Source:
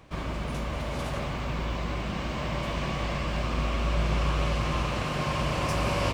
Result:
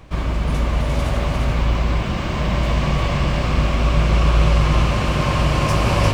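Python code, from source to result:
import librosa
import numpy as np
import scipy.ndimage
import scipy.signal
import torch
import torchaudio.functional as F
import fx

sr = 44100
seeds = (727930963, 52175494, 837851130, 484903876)

p1 = fx.low_shelf(x, sr, hz=83.0, db=11.0)
p2 = p1 + fx.echo_single(p1, sr, ms=350, db=-4.0, dry=0)
y = F.gain(torch.from_numpy(p2), 6.5).numpy()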